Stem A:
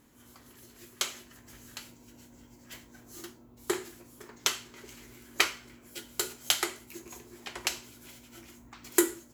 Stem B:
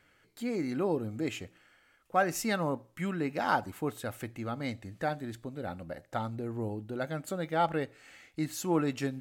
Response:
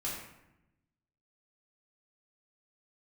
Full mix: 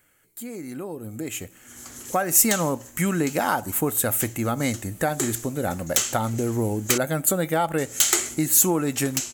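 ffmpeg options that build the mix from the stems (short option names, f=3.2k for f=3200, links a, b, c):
-filter_complex "[0:a]lowpass=f=6.2k:t=q:w=1.6,bandreject=f=1k:w=9.4,asoftclip=type=tanh:threshold=-20.5dB,adelay=1500,volume=-1dB,asplit=3[a][b][c];[a]atrim=end=6.98,asetpts=PTS-STARTPTS,afade=t=out:st=6.976:d=0.004:c=hsin[d];[b]atrim=start=6.98:end=7.78,asetpts=PTS-STARTPTS,volume=0[e];[c]atrim=start=7.78,asetpts=PTS-STARTPTS,afade=t=in:d=0.004:c=hsin[f];[d][e][f]concat=n=3:v=0:a=1[g];[1:a]acompressor=threshold=-32dB:ratio=5,volume=-0.5dB,asplit=2[h][i];[i]apad=whole_len=477779[j];[g][j]sidechaincompress=threshold=-46dB:ratio=6:attack=35:release=573[k];[k][h]amix=inputs=2:normalize=0,dynaudnorm=f=250:g=13:m=13dB,aexciter=amount=2.8:drive=9.9:freq=6.8k"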